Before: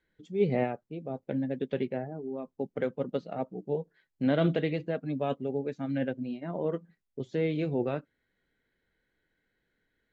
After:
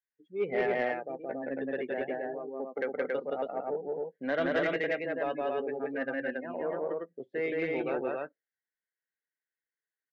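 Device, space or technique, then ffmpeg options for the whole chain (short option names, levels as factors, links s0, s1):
intercom: -af "afftdn=nr=27:nf=-44,highpass=440,lowpass=3700,equalizer=f=1800:t=o:w=0.5:g=9.5,aecho=1:1:172|277:0.891|0.794,asoftclip=type=tanh:threshold=0.1"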